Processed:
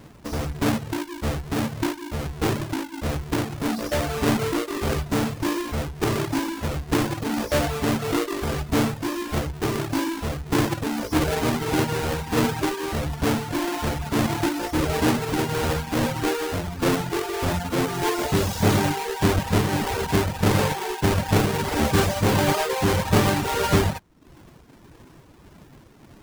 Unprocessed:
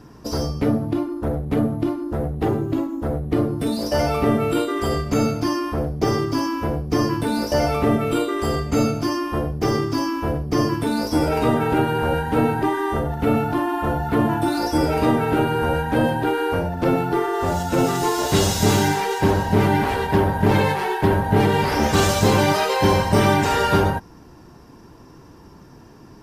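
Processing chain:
each half-wave held at its own peak
reverb reduction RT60 0.59 s
amplitude tremolo 1.6 Hz, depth 29%
level −5.5 dB

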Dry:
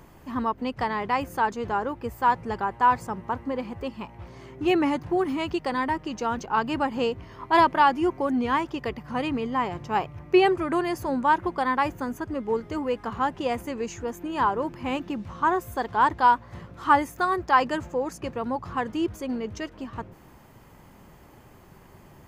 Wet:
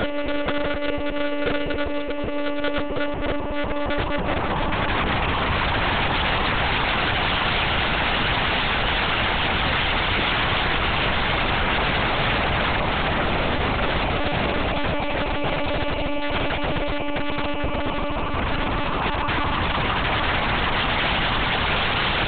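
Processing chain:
low shelf with overshoot 270 Hz −6.5 dB, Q 1.5
extreme stretch with random phases 14×, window 1.00 s, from 0:13.82
wrap-around overflow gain 24 dB
one-pitch LPC vocoder at 8 kHz 290 Hz
level +9 dB

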